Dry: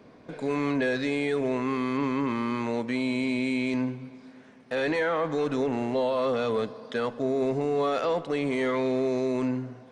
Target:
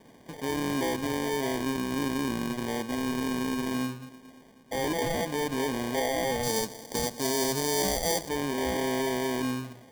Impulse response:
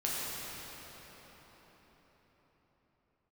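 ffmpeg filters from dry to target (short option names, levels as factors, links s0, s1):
-filter_complex "[0:a]acrusher=samples=33:mix=1:aa=0.000001,asettb=1/sr,asplit=3[s0][s1][s2];[s0]atrim=end=6.434[s3];[s1]atrim=start=6.43:end=8.29,asetpts=PTS-STARTPTS,afade=t=in:d=0.004:c=qsin,afade=t=out:st=1.856:d=0.004:c=qsin,highshelf=f=3700:t=q:w=1.5:g=8[s4];[s2]atrim=start=8.286[s5];[s3][s4]acrossfade=d=0.004:c1=hsin:c2=qsin[s6];[s6][s5]acrossfade=d=0.004:c1=qsin:c2=hsin,volume=0.75"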